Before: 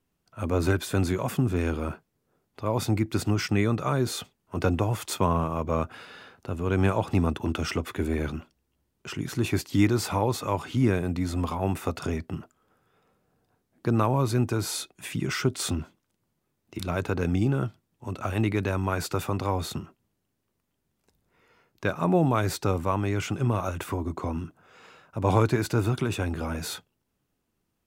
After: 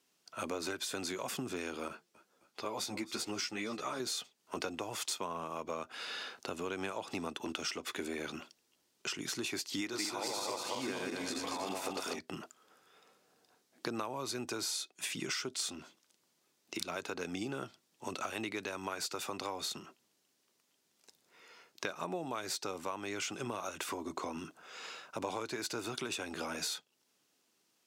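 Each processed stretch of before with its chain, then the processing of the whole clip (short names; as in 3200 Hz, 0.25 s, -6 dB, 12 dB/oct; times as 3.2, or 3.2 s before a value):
1.88–4 de-hum 177.8 Hz, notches 2 + frequency-shifting echo 0.262 s, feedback 51%, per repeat -36 Hz, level -20.5 dB + ensemble effect
9.81–12.19 regenerating reverse delay 0.118 s, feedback 67%, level -1 dB + HPF 190 Hz 6 dB/oct
whole clip: HPF 300 Hz 12 dB/oct; bell 5300 Hz +11.5 dB 2.1 oct; compressor 6:1, threshold -37 dBFS; gain +1 dB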